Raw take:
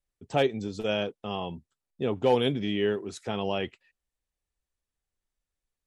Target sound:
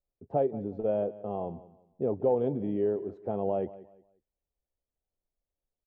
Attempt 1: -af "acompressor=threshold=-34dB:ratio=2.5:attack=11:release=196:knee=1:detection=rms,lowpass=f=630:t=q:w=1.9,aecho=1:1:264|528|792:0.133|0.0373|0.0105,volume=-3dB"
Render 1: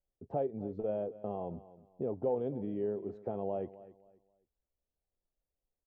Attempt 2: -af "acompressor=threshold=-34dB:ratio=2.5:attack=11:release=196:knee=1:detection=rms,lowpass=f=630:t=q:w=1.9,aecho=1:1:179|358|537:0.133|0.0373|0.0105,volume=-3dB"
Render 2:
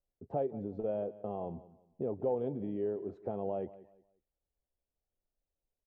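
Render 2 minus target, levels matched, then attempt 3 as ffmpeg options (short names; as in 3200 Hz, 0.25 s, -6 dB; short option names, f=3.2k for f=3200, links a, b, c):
compressor: peak gain reduction +6.5 dB
-af "acompressor=threshold=-23dB:ratio=2.5:attack=11:release=196:knee=1:detection=rms,lowpass=f=630:t=q:w=1.9,aecho=1:1:179|358|537:0.133|0.0373|0.0105,volume=-3dB"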